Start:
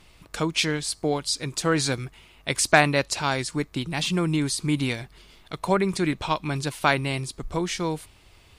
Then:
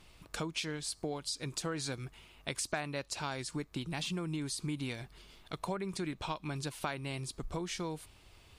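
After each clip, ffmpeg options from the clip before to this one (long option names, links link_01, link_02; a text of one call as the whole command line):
ffmpeg -i in.wav -af "equalizer=frequency=2000:width=5.1:gain=-2.5,acompressor=threshold=-30dB:ratio=4,volume=-5dB" out.wav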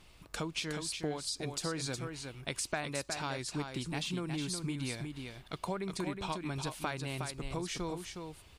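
ffmpeg -i in.wav -af "aecho=1:1:364:0.501" out.wav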